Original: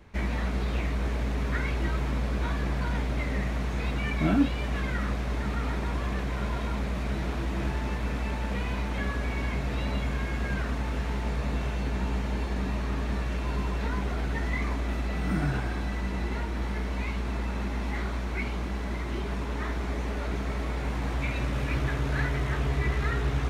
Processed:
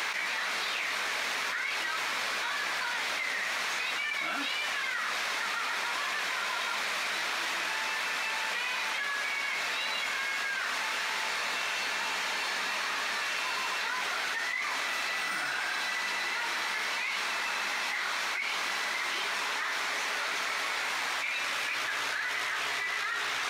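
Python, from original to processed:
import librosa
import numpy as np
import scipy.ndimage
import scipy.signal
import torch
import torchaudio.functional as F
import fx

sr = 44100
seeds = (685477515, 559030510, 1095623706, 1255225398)

y = scipy.signal.sosfilt(scipy.signal.butter(2, 1400.0, 'highpass', fs=sr, output='sos'), x)
y = fx.peak_eq(y, sr, hz=5000.0, db=3.0, octaves=0.77)
y = fx.env_flatten(y, sr, amount_pct=100)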